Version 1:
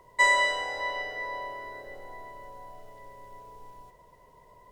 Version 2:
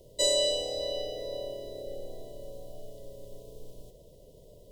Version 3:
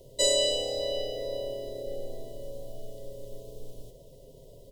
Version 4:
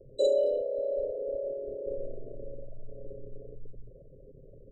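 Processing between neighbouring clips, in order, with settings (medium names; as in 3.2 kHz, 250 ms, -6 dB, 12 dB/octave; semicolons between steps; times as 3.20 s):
elliptic band-stop 590–3200 Hz, stop band 60 dB; trim +7 dB
comb 7.5 ms, depth 39%; trim +2 dB
resonances exaggerated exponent 3; Chebyshev band-stop 650–4200 Hz, order 3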